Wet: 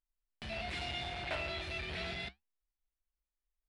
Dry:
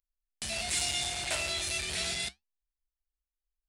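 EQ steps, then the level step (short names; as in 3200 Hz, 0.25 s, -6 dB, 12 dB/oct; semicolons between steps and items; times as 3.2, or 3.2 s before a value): air absorption 370 m; 0.0 dB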